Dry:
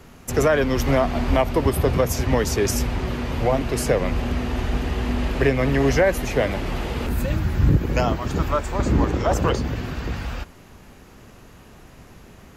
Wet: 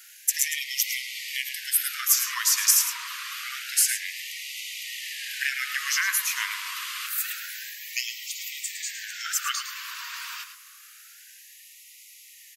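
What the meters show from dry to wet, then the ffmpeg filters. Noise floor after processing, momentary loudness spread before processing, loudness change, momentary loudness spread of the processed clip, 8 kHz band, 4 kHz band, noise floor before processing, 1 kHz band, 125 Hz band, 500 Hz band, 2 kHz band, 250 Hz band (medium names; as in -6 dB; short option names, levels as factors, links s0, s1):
-50 dBFS, 8 LU, -4.0 dB, 13 LU, +9.5 dB, +5.0 dB, -47 dBFS, -12.0 dB, under -40 dB, under -40 dB, 0.0 dB, under -40 dB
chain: -filter_complex "[0:a]aeval=exprs='0.562*(cos(1*acos(clip(val(0)/0.562,-1,1)))-cos(1*PI/2))+0.00708*(cos(6*acos(clip(val(0)/0.562,-1,1)))-cos(6*PI/2))':c=same,crystalizer=i=3.5:c=0,asplit=2[s0][s1];[s1]aecho=0:1:108:0.335[s2];[s0][s2]amix=inputs=2:normalize=0,afftfilt=real='re*gte(b*sr/1024,910*pow(1900/910,0.5+0.5*sin(2*PI*0.27*pts/sr)))':imag='im*gte(b*sr/1024,910*pow(1900/910,0.5+0.5*sin(2*PI*0.27*pts/sr)))':win_size=1024:overlap=0.75,volume=0.708"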